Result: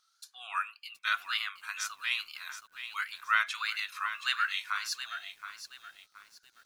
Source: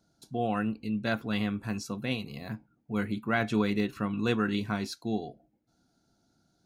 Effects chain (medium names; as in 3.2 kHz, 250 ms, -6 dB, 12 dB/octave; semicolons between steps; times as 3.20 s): elliptic high-pass 1.2 kHz, stop band 70 dB; wow and flutter 110 cents; bit-crushed delay 723 ms, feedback 35%, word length 10-bit, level -10 dB; trim +5.5 dB